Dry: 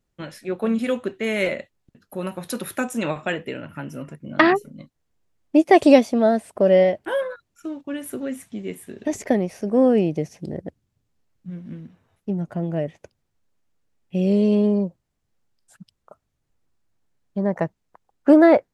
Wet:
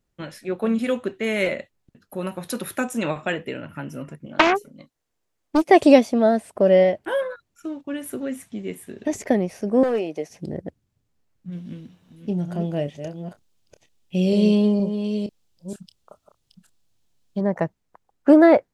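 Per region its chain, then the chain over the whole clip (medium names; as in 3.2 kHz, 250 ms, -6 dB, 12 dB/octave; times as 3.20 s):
4.26–5.67 s: tone controls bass -9 dB, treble +2 dB + loudspeaker Doppler distortion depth 0.52 ms
9.83–10.30 s: high-pass 450 Hz + overload inside the chain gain 17.5 dB + doubling 13 ms -12 dB
11.52–17.41 s: chunks repeated in reverse 468 ms, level -8 dB + resonant high shelf 2.5 kHz +7 dB, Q 1.5 + doubling 28 ms -11 dB
whole clip: none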